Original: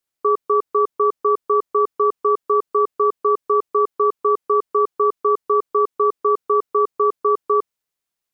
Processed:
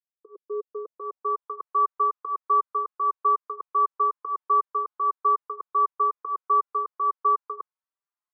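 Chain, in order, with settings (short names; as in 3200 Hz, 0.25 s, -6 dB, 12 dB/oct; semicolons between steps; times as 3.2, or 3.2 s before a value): opening faded in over 1.56 s; band-pass sweep 420 Hz -> 1100 Hz, 0.5–1.55; endless flanger 4.6 ms +1.5 Hz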